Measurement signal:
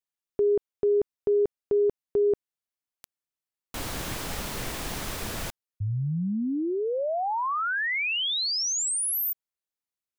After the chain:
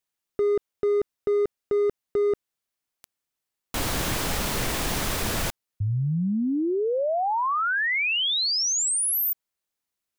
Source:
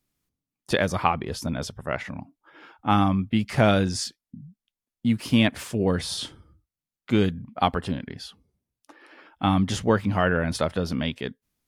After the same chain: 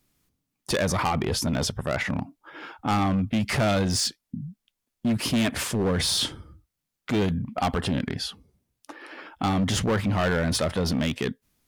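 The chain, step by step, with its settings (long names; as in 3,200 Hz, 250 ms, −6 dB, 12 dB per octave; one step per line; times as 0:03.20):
in parallel at −3 dB: compressor whose output falls as the input rises −32 dBFS, ratio −1
on the sum: hard clipping −19.5 dBFS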